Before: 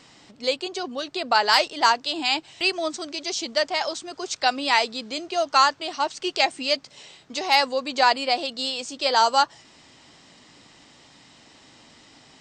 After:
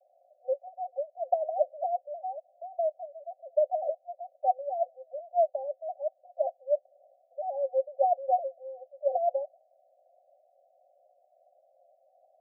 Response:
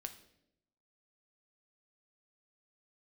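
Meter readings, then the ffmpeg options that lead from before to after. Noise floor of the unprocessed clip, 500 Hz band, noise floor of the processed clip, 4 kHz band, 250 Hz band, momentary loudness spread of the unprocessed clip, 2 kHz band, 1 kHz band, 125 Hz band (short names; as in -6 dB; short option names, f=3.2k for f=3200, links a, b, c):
-53 dBFS, -1.0 dB, -69 dBFS, under -40 dB, under -40 dB, 11 LU, under -40 dB, -9.0 dB, n/a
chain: -af "asuperpass=centerf=630:order=20:qfactor=2.6"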